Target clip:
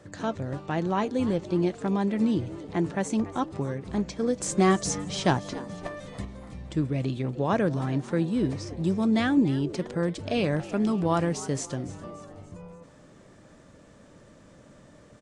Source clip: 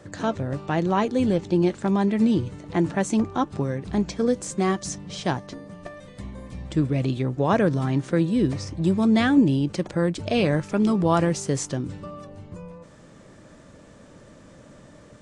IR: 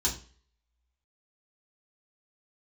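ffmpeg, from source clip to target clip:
-filter_complex "[0:a]asettb=1/sr,asplit=3[s0][s1][s2];[s0]atrim=end=4.404[s3];[s1]atrim=start=4.4:end=6.25,asetpts=PTS-STARTPTS,afade=t=in:d=0.004:c=qsin,afade=t=out:st=1.846:d=0.004:c=qsin,acontrast=80[s4];[s2]atrim=start=6.246[s5];[s3][s4]acrossfade=d=0.004:c1=hsin:c2=qsin[s6];[s6][s5]acrossfade=d=0.004:c1=qsin:c2=hsin,asplit=5[s7][s8][s9][s10][s11];[s8]adelay=287,afreqshift=100,volume=0.133[s12];[s9]adelay=574,afreqshift=200,volume=0.0653[s13];[s10]adelay=861,afreqshift=300,volume=0.032[s14];[s11]adelay=1148,afreqshift=400,volume=0.0157[s15];[s7][s12][s13][s14][s15]amix=inputs=5:normalize=0,volume=0.596"

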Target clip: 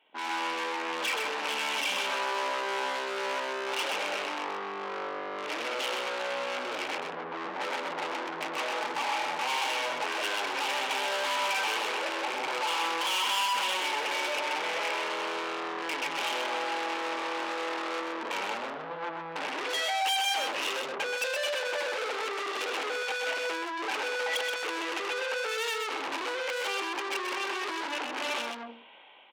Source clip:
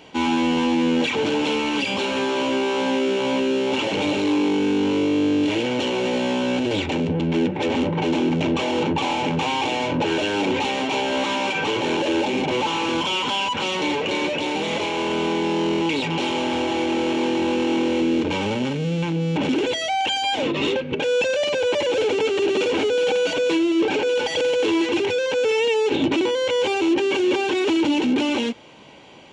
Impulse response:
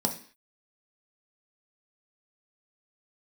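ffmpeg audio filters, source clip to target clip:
-filter_complex "[0:a]aresample=8000,aresample=44100,afwtdn=0.0316,asplit=2[s0][s1];[1:a]atrim=start_sample=2205,adelay=22[s2];[s1][s2]afir=irnorm=-1:irlink=0,volume=0.1[s3];[s0][s3]amix=inputs=2:normalize=0,aeval=exprs='(tanh(31.6*val(0)+0.45)-tanh(0.45))/31.6':c=same,aecho=1:1:127:0.562,dynaudnorm=f=210:g=5:m=4.47,alimiter=limit=0.106:level=0:latency=1,highpass=790"

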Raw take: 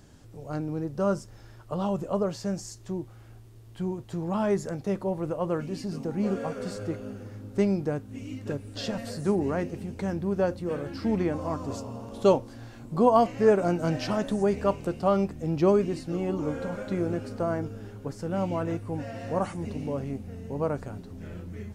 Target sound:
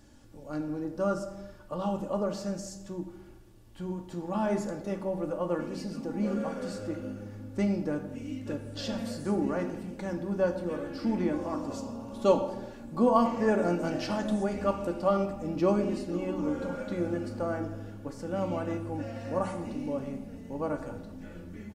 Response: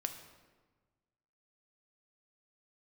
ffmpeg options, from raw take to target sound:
-filter_complex "[0:a]aecho=1:1:3.5:0.52[s0];[1:a]atrim=start_sample=2205,asetrate=61740,aresample=44100[s1];[s0][s1]afir=irnorm=-1:irlink=0"

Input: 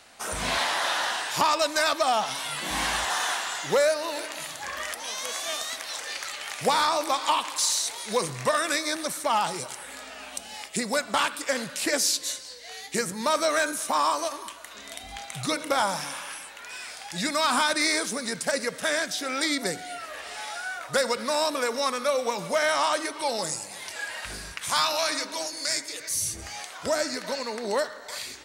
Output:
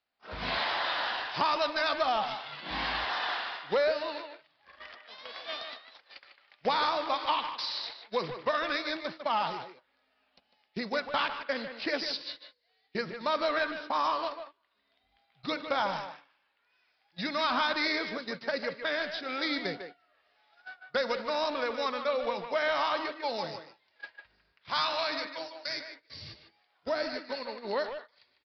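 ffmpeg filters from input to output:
-filter_complex "[0:a]agate=range=0.0447:threshold=0.0282:ratio=16:detection=peak,asplit=2[s0][s1];[s1]adelay=150,highpass=300,lowpass=3400,asoftclip=type=hard:threshold=0.0631,volume=0.501[s2];[s0][s2]amix=inputs=2:normalize=0,aresample=11025,aresample=44100,volume=0.562"

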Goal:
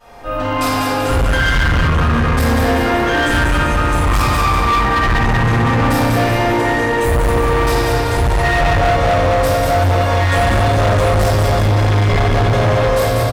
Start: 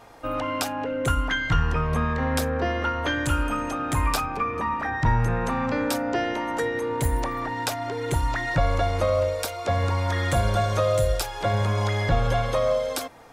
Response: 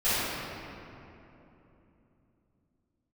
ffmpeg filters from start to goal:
-filter_complex "[0:a]aecho=1:1:191|382|573|764|955|1146|1337:0.631|0.322|0.164|0.0837|0.0427|0.0218|0.0111[s0];[1:a]atrim=start_sample=2205[s1];[s0][s1]afir=irnorm=-1:irlink=0,asoftclip=type=hard:threshold=0.398,volume=0.708"

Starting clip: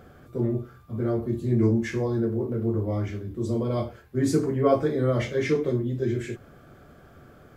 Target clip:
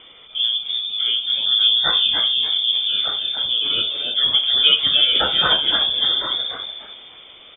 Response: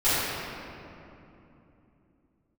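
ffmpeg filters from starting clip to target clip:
-filter_complex "[0:a]asplit=5[s0][s1][s2][s3][s4];[s1]adelay=294,afreqshift=-140,volume=0.631[s5];[s2]adelay=588,afreqshift=-280,volume=0.221[s6];[s3]adelay=882,afreqshift=-420,volume=0.0776[s7];[s4]adelay=1176,afreqshift=-560,volume=0.0269[s8];[s0][s5][s6][s7][s8]amix=inputs=5:normalize=0,aexciter=amount=10.2:drive=4.2:freq=2500,lowpass=f=3100:t=q:w=0.5098,lowpass=f=3100:t=q:w=0.6013,lowpass=f=3100:t=q:w=0.9,lowpass=f=3100:t=q:w=2.563,afreqshift=-3600,volume=1.68"

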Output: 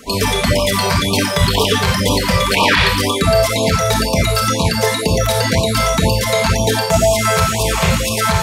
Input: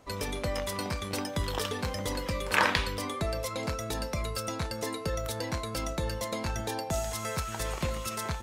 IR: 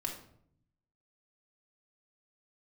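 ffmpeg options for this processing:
-filter_complex "[0:a]areverse,acompressor=mode=upward:threshold=0.02:ratio=2.5,areverse,lowshelf=f=68:g=-8.5,bandreject=f=510:w=13[s0];[1:a]atrim=start_sample=2205,afade=t=out:st=0.14:d=0.01,atrim=end_sample=6615,asetrate=31311,aresample=44100[s1];[s0][s1]afir=irnorm=-1:irlink=0,acrossover=split=560|2700[s2][s3][s4];[s3]asoftclip=type=tanh:threshold=0.0562[s5];[s2][s5][s4]amix=inputs=3:normalize=0,acrossover=split=3800[s6][s7];[s7]acompressor=threshold=0.00562:ratio=4:attack=1:release=60[s8];[s6][s8]amix=inputs=2:normalize=0,highshelf=f=3600:g=7.5,alimiter=level_in=7.94:limit=0.891:release=50:level=0:latency=1,afftfilt=real='re*(1-between(b*sr/1024,250*pow(1700/250,0.5+0.5*sin(2*PI*2*pts/sr))/1.41,250*pow(1700/250,0.5+0.5*sin(2*PI*2*pts/sr))*1.41))':imag='im*(1-between(b*sr/1024,250*pow(1700/250,0.5+0.5*sin(2*PI*2*pts/sr))/1.41,250*pow(1700/250,0.5+0.5*sin(2*PI*2*pts/sr))*1.41))':win_size=1024:overlap=0.75,volume=0.841"

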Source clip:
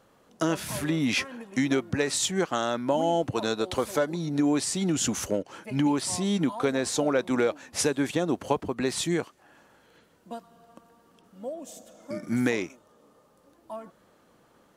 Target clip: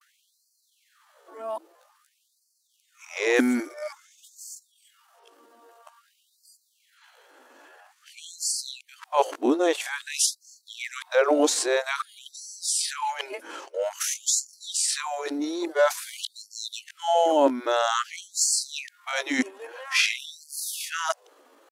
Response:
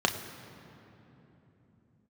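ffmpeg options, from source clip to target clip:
-af "areverse,atempo=0.68,afftfilt=real='re*gte(b*sr/1024,240*pow(4300/240,0.5+0.5*sin(2*PI*0.5*pts/sr)))':imag='im*gte(b*sr/1024,240*pow(4300/240,0.5+0.5*sin(2*PI*0.5*pts/sr)))':win_size=1024:overlap=0.75,volume=1.88"

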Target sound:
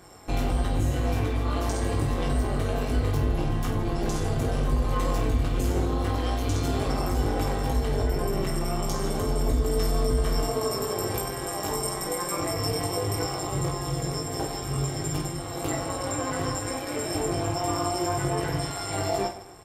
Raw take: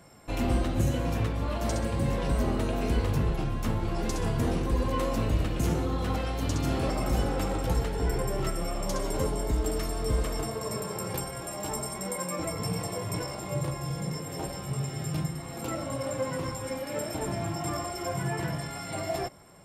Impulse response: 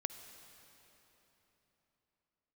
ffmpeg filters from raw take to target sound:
-af "bandreject=f=2600:w=18,aecho=1:1:2.6:0.67,alimiter=limit=0.0794:level=0:latency=1:release=89,tremolo=f=190:d=0.75,aecho=1:1:20|50|95|162.5|263.8:0.631|0.398|0.251|0.158|0.1,volume=1.88"

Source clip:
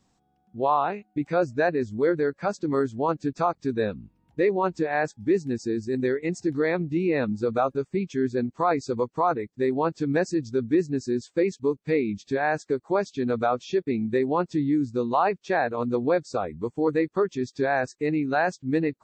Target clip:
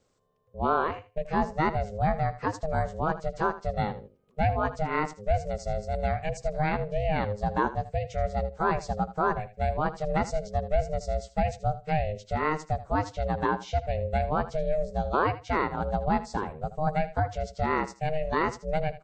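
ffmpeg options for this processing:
-af "aecho=1:1:79|158:0.178|0.0285,aeval=exprs='val(0)*sin(2*PI*310*n/s)':c=same"

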